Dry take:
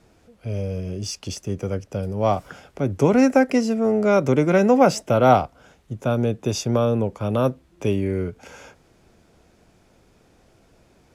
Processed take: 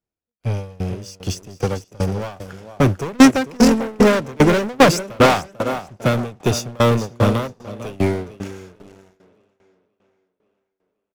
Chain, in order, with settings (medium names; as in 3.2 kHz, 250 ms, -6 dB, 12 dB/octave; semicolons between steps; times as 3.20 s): treble shelf 5.9 kHz +3 dB; on a send: feedback delay 446 ms, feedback 32%, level -9.5 dB; on the sum: waveshaping leveller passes 5; spectral noise reduction 6 dB; tape echo 529 ms, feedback 52%, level -18.5 dB, low-pass 6 kHz; tremolo saw down 2.5 Hz, depth 90%; dynamic bell 700 Hz, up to -4 dB, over -18 dBFS, Q 2.1; upward expansion 2.5:1, over -18 dBFS; trim +2 dB